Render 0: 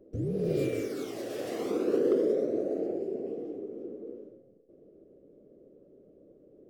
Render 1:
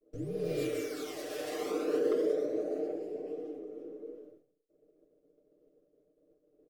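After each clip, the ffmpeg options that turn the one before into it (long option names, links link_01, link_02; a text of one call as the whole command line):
ffmpeg -i in.wav -af "equalizer=frequency=140:width=0.43:gain=-12.5,agate=range=-33dB:threshold=-55dB:ratio=3:detection=peak,aecho=1:1:6.6:0.79" out.wav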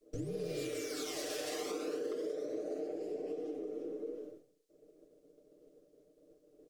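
ffmpeg -i in.wav -af "equalizer=frequency=6200:width=0.57:gain=8,acompressor=threshold=-41dB:ratio=6,volume=4.5dB" out.wav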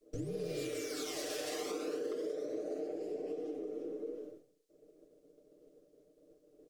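ffmpeg -i in.wav -af anull out.wav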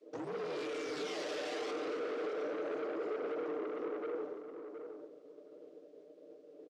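ffmpeg -i in.wav -filter_complex "[0:a]aeval=exprs='(tanh(178*val(0)+0.15)-tanh(0.15))/178':channel_layout=same,highpass=310,lowpass=3600,asplit=2[link_01][link_02];[link_02]adelay=719,lowpass=frequency=1500:poles=1,volume=-7dB,asplit=2[link_03][link_04];[link_04]adelay=719,lowpass=frequency=1500:poles=1,volume=0.15,asplit=2[link_05][link_06];[link_06]adelay=719,lowpass=frequency=1500:poles=1,volume=0.15[link_07];[link_03][link_05][link_07]amix=inputs=3:normalize=0[link_08];[link_01][link_08]amix=inputs=2:normalize=0,volume=9.5dB" out.wav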